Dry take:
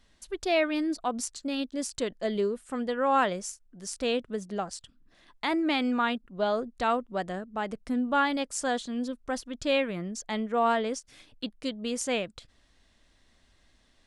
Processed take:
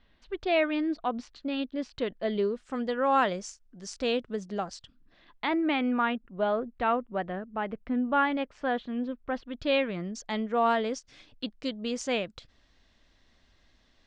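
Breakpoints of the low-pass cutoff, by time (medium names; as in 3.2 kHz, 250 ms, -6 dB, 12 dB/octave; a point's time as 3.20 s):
low-pass 24 dB/octave
2.18 s 3.7 kHz
2.73 s 6.4 kHz
4.64 s 6.4 kHz
5.83 s 2.9 kHz
9.26 s 2.9 kHz
10.02 s 6.2 kHz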